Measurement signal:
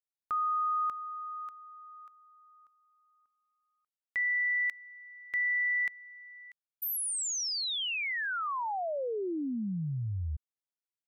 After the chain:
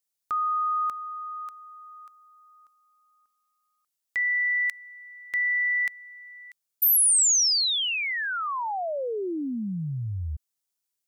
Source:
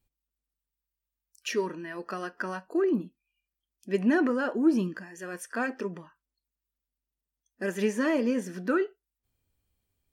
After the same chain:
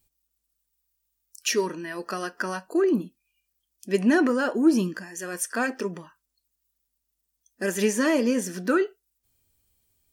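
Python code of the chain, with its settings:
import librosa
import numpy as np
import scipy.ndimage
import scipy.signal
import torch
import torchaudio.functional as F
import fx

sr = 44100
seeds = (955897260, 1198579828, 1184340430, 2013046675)

y = fx.bass_treble(x, sr, bass_db=-1, treble_db=10)
y = y * 10.0 ** (4.0 / 20.0)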